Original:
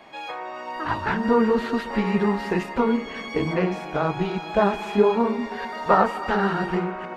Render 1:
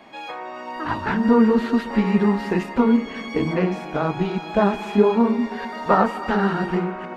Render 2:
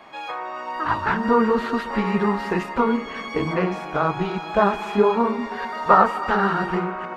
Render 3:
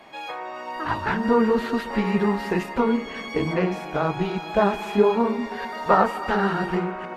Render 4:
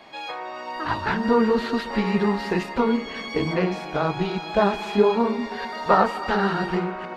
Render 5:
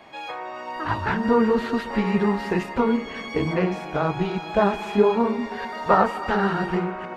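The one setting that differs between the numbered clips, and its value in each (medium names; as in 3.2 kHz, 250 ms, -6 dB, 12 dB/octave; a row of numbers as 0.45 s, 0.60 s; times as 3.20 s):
peaking EQ, frequency: 240 Hz, 1.2 kHz, 13 kHz, 4.3 kHz, 95 Hz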